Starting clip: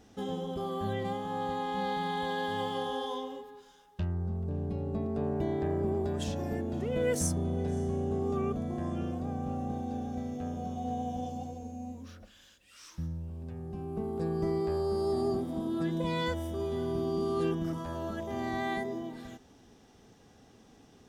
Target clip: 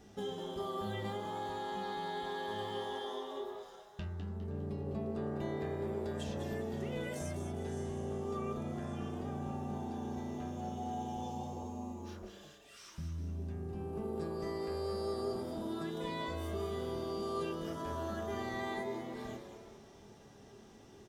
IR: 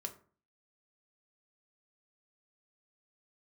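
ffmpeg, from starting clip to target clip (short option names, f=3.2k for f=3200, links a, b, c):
-filter_complex "[0:a]acrossover=split=1200|3300[a][b][c];[a]acompressor=threshold=-40dB:ratio=4[d];[b]acompressor=threshold=-50dB:ratio=4[e];[c]acompressor=threshold=-54dB:ratio=4[f];[d][e][f]amix=inputs=3:normalize=0,asplit=6[g][h][i][j][k][l];[h]adelay=203,afreqshift=110,volume=-7.5dB[m];[i]adelay=406,afreqshift=220,volume=-15.2dB[n];[j]adelay=609,afreqshift=330,volume=-23dB[o];[k]adelay=812,afreqshift=440,volume=-30.7dB[p];[l]adelay=1015,afreqshift=550,volume=-38.5dB[q];[g][m][n][o][p][q]amix=inputs=6:normalize=0[r];[1:a]atrim=start_sample=2205[s];[r][s]afir=irnorm=-1:irlink=0,volume=2dB"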